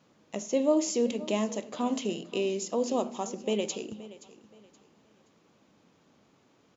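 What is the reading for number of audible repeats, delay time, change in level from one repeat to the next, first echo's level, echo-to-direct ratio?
2, 524 ms, −10.5 dB, −18.0 dB, −17.5 dB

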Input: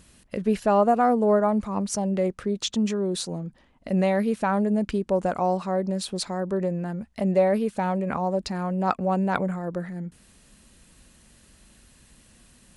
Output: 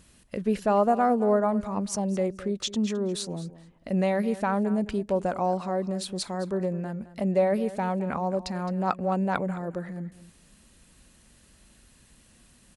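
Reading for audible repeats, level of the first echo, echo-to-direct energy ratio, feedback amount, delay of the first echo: 2, −16.0 dB, −16.0 dB, 15%, 214 ms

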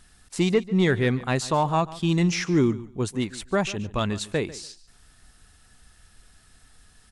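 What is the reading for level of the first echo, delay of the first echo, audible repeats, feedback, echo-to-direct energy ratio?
−18.0 dB, 144 ms, 2, 18%, −18.0 dB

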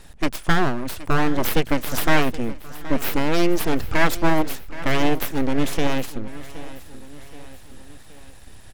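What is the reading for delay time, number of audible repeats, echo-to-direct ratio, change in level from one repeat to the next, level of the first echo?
772 ms, 3, −15.0 dB, −5.5 dB, −16.5 dB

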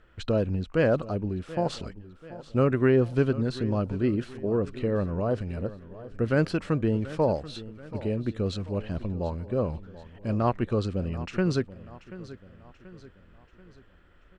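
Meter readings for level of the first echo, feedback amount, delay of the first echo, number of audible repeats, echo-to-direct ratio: −16.5 dB, 47%, 734 ms, 3, −15.5 dB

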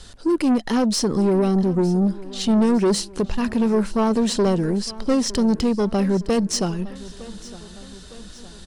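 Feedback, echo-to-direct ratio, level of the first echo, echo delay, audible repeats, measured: 54%, −17.5 dB, −19.0 dB, 910 ms, 3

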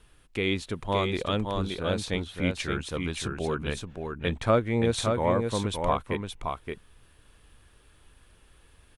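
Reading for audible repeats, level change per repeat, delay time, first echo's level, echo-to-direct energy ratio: 1, repeats not evenly spaced, 571 ms, −5.0 dB, −5.0 dB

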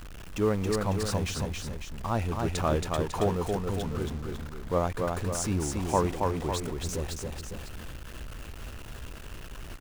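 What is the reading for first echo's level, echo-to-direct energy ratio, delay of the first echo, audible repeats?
−3.5 dB, −2.5 dB, 275 ms, 2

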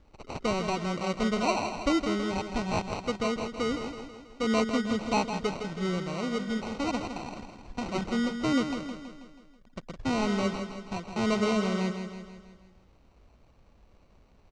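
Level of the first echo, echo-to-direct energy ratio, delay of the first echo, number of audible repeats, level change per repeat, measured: −8.0 dB, −6.5 dB, 162 ms, 5, −5.5 dB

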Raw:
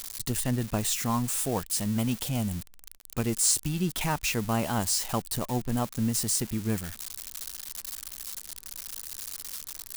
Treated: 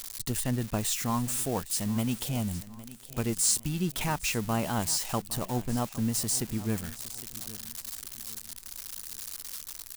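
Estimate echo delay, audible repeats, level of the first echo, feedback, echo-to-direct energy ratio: 811 ms, 3, −17.5 dB, 37%, −17.0 dB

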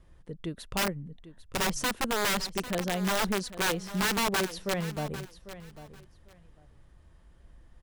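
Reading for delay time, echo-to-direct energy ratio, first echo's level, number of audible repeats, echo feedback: 797 ms, −14.5 dB, −14.5 dB, 2, 19%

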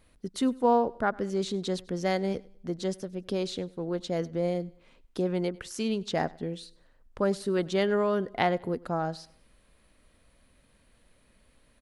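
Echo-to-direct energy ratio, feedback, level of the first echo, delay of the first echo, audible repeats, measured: −22.5 dB, 38%, −23.0 dB, 99 ms, 2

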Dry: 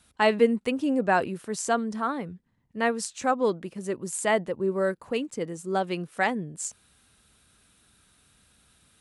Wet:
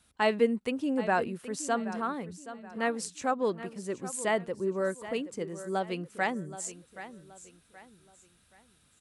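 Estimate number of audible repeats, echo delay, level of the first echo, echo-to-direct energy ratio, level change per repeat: 3, 775 ms, −14.0 dB, −13.5 dB, −9.0 dB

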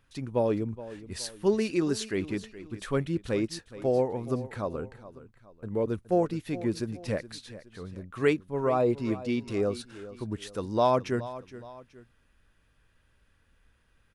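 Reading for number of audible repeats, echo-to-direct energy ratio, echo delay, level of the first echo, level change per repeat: 2, −15.0 dB, 420 ms, −15.5 dB, −7.5 dB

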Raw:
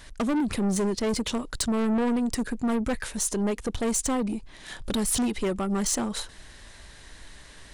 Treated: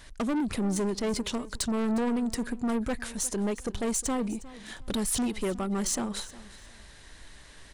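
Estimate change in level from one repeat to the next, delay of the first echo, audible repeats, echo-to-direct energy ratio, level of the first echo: −12.5 dB, 358 ms, 2, −18.0 dB, −18.5 dB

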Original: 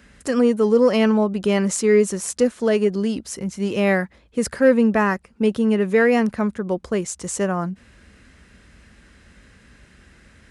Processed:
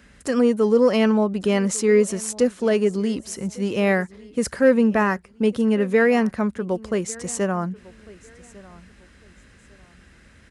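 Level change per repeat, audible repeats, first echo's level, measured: −11.0 dB, 2, −22.0 dB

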